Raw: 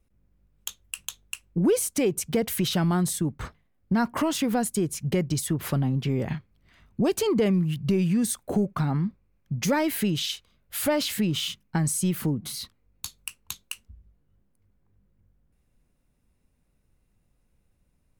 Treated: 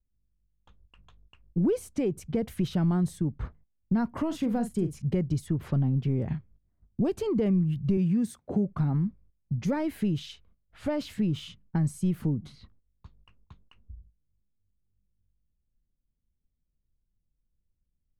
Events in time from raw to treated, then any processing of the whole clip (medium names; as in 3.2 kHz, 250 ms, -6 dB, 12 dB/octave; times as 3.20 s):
4.27–5.02 s: doubling 42 ms -10 dB
7.97–8.69 s: high-pass 95 Hz
whole clip: gate -54 dBFS, range -14 dB; level-controlled noise filter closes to 650 Hz, open at -24 dBFS; tilt EQ -3 dB/octave; trim -8.5 dB